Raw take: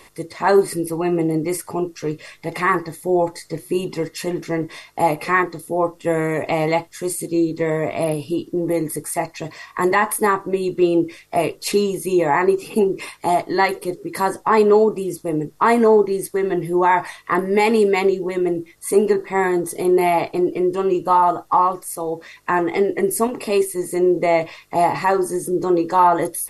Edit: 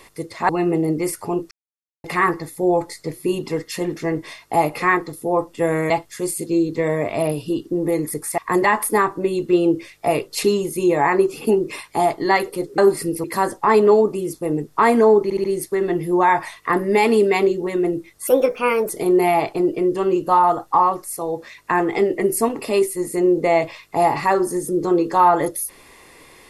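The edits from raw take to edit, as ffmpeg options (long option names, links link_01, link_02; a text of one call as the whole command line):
ffmpeg -i in.wav -filter_complex "[0:a]asplit=13[link_01][link_02][link_03][link_04][link_05][link_06][link_07][link_08][link_09][link_10][link_11][link_12][link_13];[link_01]atrim=end=0.492[link_14];[link_02]atrim=start=0.948:end=1.97,asetpts=PTS-STARTPTS,afade=type=out:start_time=1.018:duration=0.004:curve=hsin[link_15];[link_03]atrim=start=1.97:end=2.5,asetpts=PTS-STARTPTS,volume=0[link_16];[link_04]atrim=start=2.5:end=6.362,asetpts=PTS-STARTPTS,afade=type=in:duration=0.004:curve=hsin[link_17];[link_05]atrim=start=6.718:end=9.202[link_18];[link_06]atrim=start=9.668:end=14.072[link_19];[link_07]atrim=start=0.488:end=0.952[link_20];[link_08]atrim=start=14.068:end=16.132[link_21];[link_09]atrim=start=16.058:end=16.132[link_22];[link_10]atrim=start=16.058:end=16.132[link_23];[link_11]atrim=start=16.058:end=18.894[link_24];[link_12]atrim=start=18.89:end=19.68,asetpts=PTS-STARTPTS,asetrate=56007,aresample=44100,atrim=end_sample=27432,asetpts=PTS-STARTPTS[link_25];[link_13]atrim=start=19.676[link_26];[link_15][link_16][link_17]concat=n=3:v=0:a=1[link_27];[link_14][link_27]acrossfade=duration=0.004:curve1=hsin:curve2=hsin[link_28];[link_28][link_18]acrossfade=duration=0.004:curve1=hsin:curve2=hsin[link_29];[link_29][link_19]acrossfade=duration=0.004:curve1=hsin:curve2=hsin[link_30];[link_30][link_20]acrossfade=duration=0.004:curve1=hsin:curve2=hsin[link_31];[link_31][link_21]acrossfade=duration=0.004:curve1=hsin:curve2=hsin[link_32];[link_32][link_22]acrossfade=duration=0.004:curve1=hsin:curve2=hsin[link_33];[link_33][link_23]acrossfade=duration=0.004:curve1=hsin:curve2=hsin[link_34];[link_34][link_24]acrossfade=duration=0.004:curve1=hsin:curve2=hsin[link_35];[link_35][link_25]acrossfade=duration=0.004:curve1=hsin:curve2=hsin[link_36];[link_36][link_26]acrossfade=duration=0.004:curve1=hsin:curve2=hsin" out.wav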